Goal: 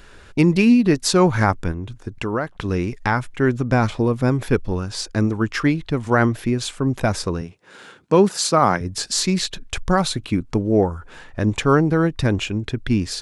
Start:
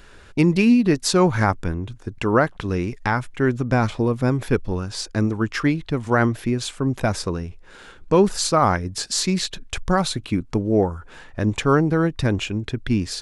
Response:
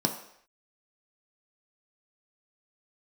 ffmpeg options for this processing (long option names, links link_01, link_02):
-filter_complex "[0:a]asplit=3[link_01][link_02][link_03];[link_01]afade=type=out:start_time=1.71:duration=0.02[link_04];[link_02]acompressor=threshold=-27dB:ratio=2,afade=type=in:start_time=1.71:duration=0.02,afade=type=out:start_time=2.58:duration=0.02[link_05];[link_03]afade=type=in:start_time=2.58:duration=0.02[link_06];[link_04][link_05][link_06]amix=inputs=3:normalize=0,asettb=1/sr,asplit=3[link_07][link_08][link_09];[link_07]atrim=end=7.414[link_10];[link_08]atrim=start=7.41:end=8.81,asetpts=PTS-STARTPTS,afade=type=in:duration=0.004:curve=qsin,afade=type=out:start_time=1.396:duration=0.004:curve=qsin,highpass=frequency=120:width=0.5412,highpass=frequency=120:width=1.3066[link_11];[link_09]atrim=start=8.806[link_12];[link_10][link_11]acrossfade=duration=0.004:curve1=hsin:curve2=qsin[link_13];[link_13][link_12]acrossfade=duration=0.004:curve1=qsin:curve2=hsin,volume=1.5dB"